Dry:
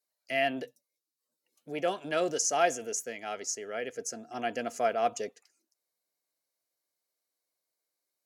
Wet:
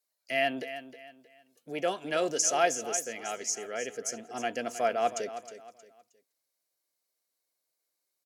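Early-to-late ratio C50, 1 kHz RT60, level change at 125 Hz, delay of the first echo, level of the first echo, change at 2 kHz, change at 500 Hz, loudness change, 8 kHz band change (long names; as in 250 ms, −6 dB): no reverb audible, no reverb audible, −1.0 dB, 314 ms, −12.5 dB, +1.0 dB, +0.5 dB, +1.0 dB, +3.0 dB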